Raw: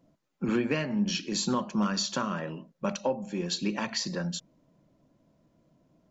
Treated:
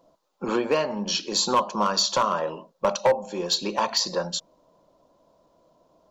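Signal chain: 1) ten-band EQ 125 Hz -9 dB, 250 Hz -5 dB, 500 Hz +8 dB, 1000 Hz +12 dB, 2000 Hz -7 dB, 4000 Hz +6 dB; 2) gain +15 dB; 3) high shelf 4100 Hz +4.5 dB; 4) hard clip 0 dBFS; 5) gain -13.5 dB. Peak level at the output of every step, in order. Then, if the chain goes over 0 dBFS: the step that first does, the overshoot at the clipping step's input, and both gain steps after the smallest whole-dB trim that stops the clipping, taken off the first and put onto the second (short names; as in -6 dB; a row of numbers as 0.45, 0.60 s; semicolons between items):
-7.5, +7.5, +7.5, 0.0, -13.5 dBFS; step 2, 7.5 dB; step 2 +7 dB, step 5 -5.5 dB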